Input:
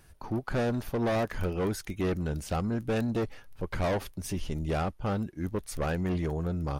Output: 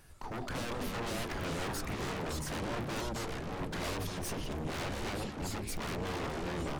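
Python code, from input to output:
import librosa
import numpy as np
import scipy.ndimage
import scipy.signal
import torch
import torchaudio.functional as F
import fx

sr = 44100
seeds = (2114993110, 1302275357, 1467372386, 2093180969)

y = fx.hum_notches(x, sr, base_hz=50, count=9)
y = 10.0 ** (-34.0 / 20.0) * (np.abs((y / 10.0 ** (-34.0 / 20.0) + 3.0) % 4.0 - 2.0) - 1.0)
y = fx.echo_pitch(y, sr, ms=110, semitones=-4, count=3, db_per_echo=-3.0)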